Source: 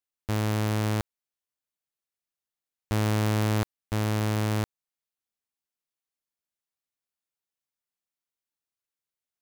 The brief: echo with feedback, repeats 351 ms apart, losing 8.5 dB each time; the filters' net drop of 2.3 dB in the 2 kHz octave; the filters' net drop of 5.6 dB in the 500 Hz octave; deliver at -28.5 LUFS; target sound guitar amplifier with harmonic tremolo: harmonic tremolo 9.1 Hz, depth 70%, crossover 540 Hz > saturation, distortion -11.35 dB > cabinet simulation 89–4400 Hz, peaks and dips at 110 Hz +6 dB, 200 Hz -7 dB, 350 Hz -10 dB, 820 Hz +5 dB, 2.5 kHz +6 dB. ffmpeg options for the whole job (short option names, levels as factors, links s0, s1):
-filter_complex "[0:a]equalizer=f=500:t=o:g=-5,equalizer=f=2000:t=o:g=-5.5,aecho=1:1:351|702|1053|1404:0.376|0.143|0.0543|0.0206,acrossover=split=540[s0][s1];[s0]aeval=exprs='val(0)*(1-0.7/2+0.7/2*cos(2*PI*9.1*n/s))':c=same[s2];[s1]aeval=exprs='val(0)*(1-0.7/2-0.7/2*cos(2*PI*9.1*n/s))':c=same[s3];[s2][s3]amix=inputs=2:normalize=0,asoftclip=threshold=0.0335,highpass=89,equalizer=f=110:t=q:w=4:g=6,equalizer=f=200:t=q:w=4:g=-7,equalizer=f=350:t=q:w=4:g=-10,equalizer=f=820:t=q:w=4:g=5,equalizer=f=2500:t=q:w=4:g=6,lowpass=f=4400:w=0.5412,lowpass=f=4400:w=1.3066,volume=2.24"